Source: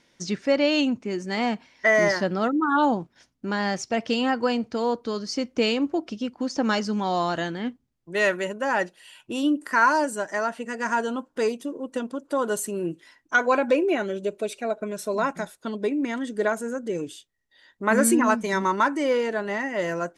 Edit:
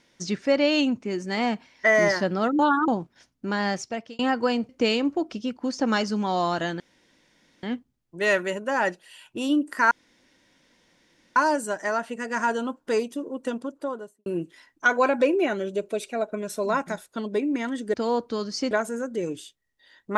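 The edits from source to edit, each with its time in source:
2.59–2.88 s: reverse
3.71–4.19 s: fade out
4.69–5.46 s: move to 16.43 s
7.57 s: insert room tone 0.83 s
9.85 s: insert room tone 1.45 s
12.04–12.75 s: studio fade out

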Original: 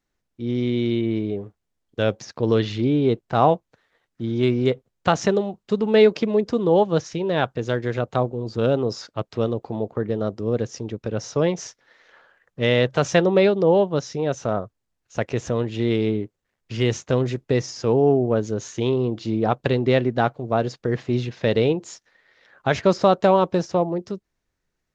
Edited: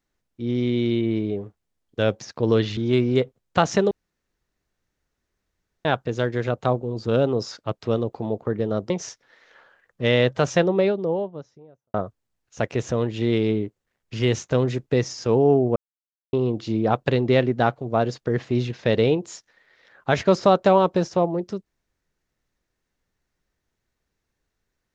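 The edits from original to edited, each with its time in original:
2.77–4.27 s: delete
5.41–7.35 s: room tone
10.40–11.48 s: delete
12.74–14.52 s: studio fade out
18.34–18.91 s: mute

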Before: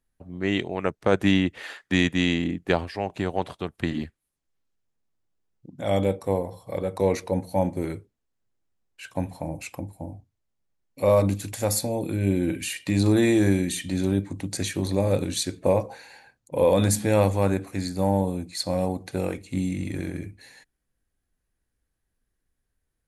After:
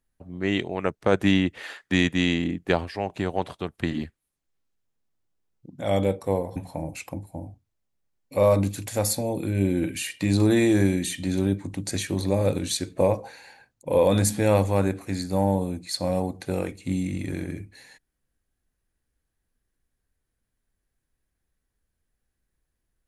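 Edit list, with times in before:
6.56–9.22 s: delete

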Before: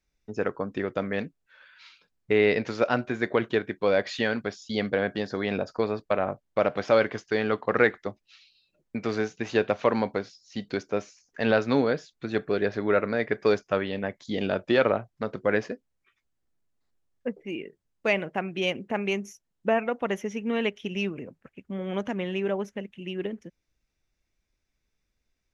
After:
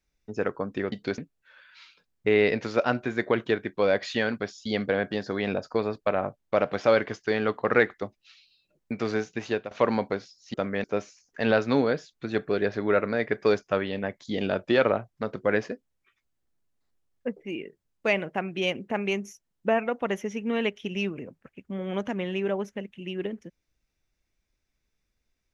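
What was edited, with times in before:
0.92–1.22 s: swap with 10.58–10.84 s
9.29–9.75 s: fade out equal-power, to -17 dB

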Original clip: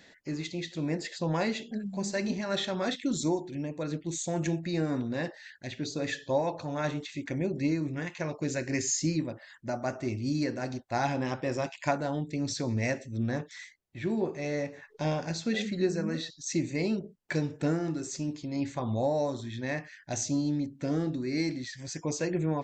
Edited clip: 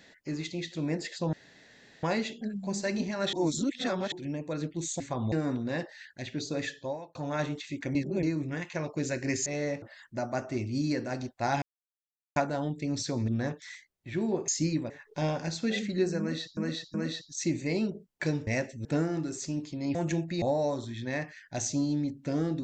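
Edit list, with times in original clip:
1.33 s: insert room tone 0.70 s
2.63–3.42 s: reverse
4.30–4.77 s: swap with 18.66–18.98 s
6.02–6.60 s: fade out
7.40–7.68 s: reverse
8.91–9.33 s: swap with 14.37–14.73 s
11.13–11.87 s: mute
12.79–13.17 s: move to 17.56 s
16.03–16.40 s: loop, 3 plays

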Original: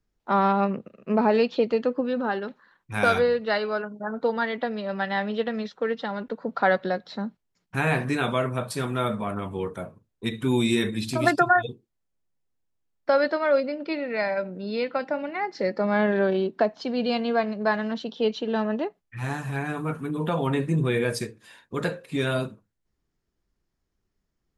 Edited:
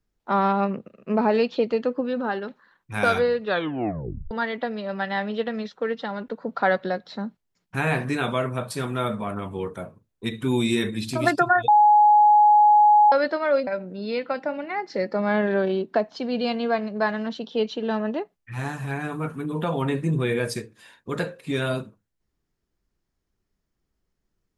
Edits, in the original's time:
3.43 s: tape stop 0.88 s
11.68–13.12 s: bleep 838 Hz -11.5 dBFS
13.67–14.32 s: delete

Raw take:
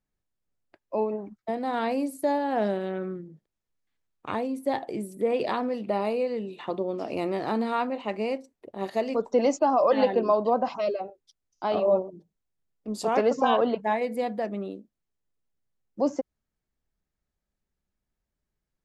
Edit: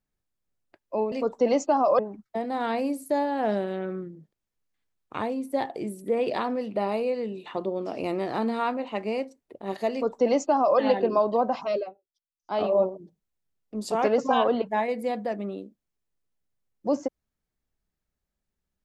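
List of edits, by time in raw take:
9.05–9.92 s: copy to 1.12 s
10.94–11.69 s: dip -20.5 dB, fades 0.13 s

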